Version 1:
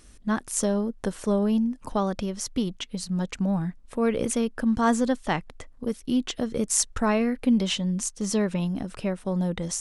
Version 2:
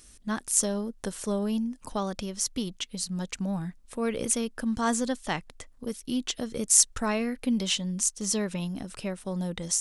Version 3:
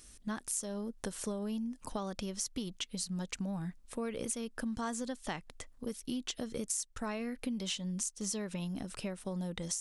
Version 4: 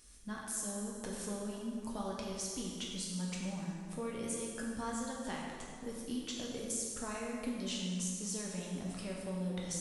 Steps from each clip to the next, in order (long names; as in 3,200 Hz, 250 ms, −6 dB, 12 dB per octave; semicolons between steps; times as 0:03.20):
high-shelf EQ 3,200 Hz +11.5 dB; level −5.5 dB
downward compressor 10 to 1, threshold −31 dBFS, peak gain reduction 16.5 dB; level −2.5 dB
dense smooth reverb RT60 2.1 s, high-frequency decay 0.75×, DRR −3.5 dB; level −6 dB